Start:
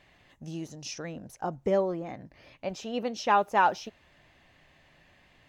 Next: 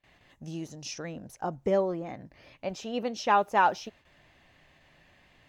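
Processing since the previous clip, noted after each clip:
noise gate with hold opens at −51 dBFS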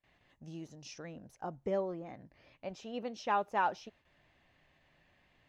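high-shelf EQ 8,000 Hz −10.5 dB
level −8 dB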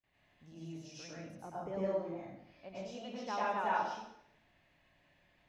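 dense smooth reverb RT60 0.71 s, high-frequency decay 0.95×, pre-delay 85 ms, DRR −7.5 dB
level −9 dB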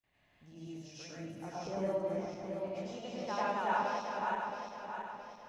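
feedback delay that plays each chunk backwards 335 ms, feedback 67%, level −3 dB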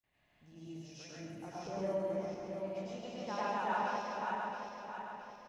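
single-tap delay 136 ms −5 dB
level −3 dB

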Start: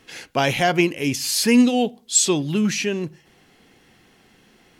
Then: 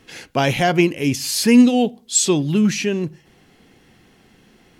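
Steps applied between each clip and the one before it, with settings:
low-shelf EQ 380 Hz +5.5 dB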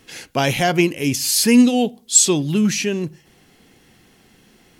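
high-shelf EQ 5,300 Hz +8.5 dB
level −1 dB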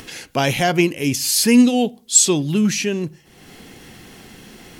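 upward compression, threshold −30 dBFS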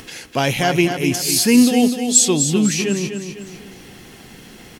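repeating echo 251 ms, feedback 44%, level −7.5 dB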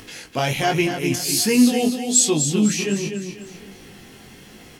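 chorus effect 1.3 Hz, delay 19 ms, depth 4.5 ms

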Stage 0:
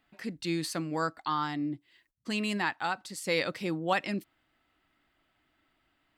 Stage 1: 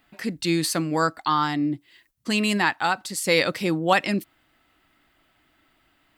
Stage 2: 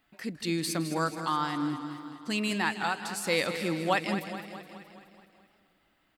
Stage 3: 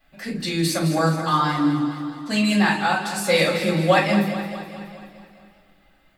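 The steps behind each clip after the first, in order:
high-shelf EQ 8,600 Hz +7 dB; level +8.5 dB
repeating echo 211 ms, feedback 57%, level −10.5 dB; feedback echo with a swinging delay time 159 ms, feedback 67%, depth 140 cents, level −16.5 dB; level −7.5 dB
rectangular room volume 160 cubic metres, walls furnished, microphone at 5.9 metres; level −2 dB

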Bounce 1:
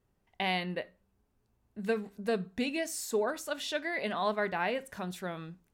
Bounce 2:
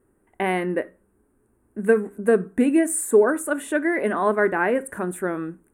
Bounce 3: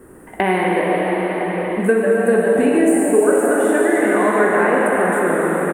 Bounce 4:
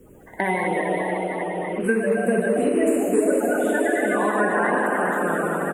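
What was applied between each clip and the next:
drawn EQ curve 170 Hz 0 dB, 320 Hz +14 dB, 710 Hz +1 dB, 1,600 Hz +7 dB, 5,000 Hz −25 dB, 9,100 Hz +13 dB, 14,000 Hz −1 dB; level +5.5 dB
echo with shifted repeats 144 ms, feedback 48%, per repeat +130 Hz, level −10 dB; dense smooth reverb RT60 4.9 s, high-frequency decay 0.75×, pre-delay 0 ms, DRR −4 dB; multiband upward and downward compressor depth 70%
spectral magnitudes quantised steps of 30 dB; level −5 dB

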